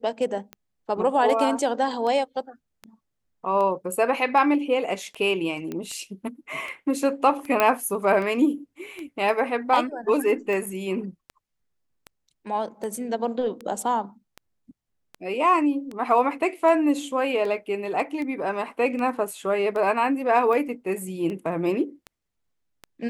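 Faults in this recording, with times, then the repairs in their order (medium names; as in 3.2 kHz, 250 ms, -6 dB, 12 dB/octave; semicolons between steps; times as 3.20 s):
tick 78 rpm -22 dBFS
5.72 s: pop -19 dBFS
7.60 s: pop -6 dBFS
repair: de-click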